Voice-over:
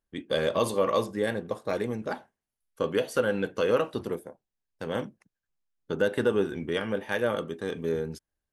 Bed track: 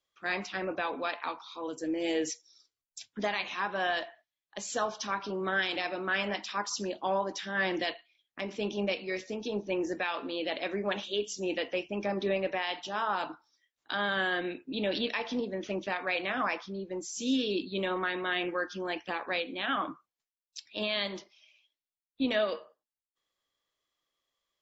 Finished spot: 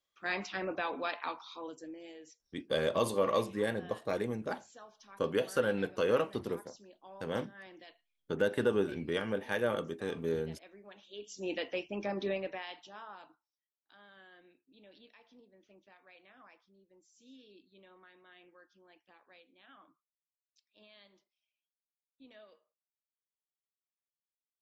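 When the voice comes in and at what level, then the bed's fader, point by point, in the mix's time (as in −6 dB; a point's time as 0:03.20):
2.40 s, −4.5 dB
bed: 0:01.53 −2.5 dB
0:02.18 −22 dB
0:10.98 −22 dB
0:11.48 −4 dB
0:12.27 −4 dB
0:13.69 −28 dB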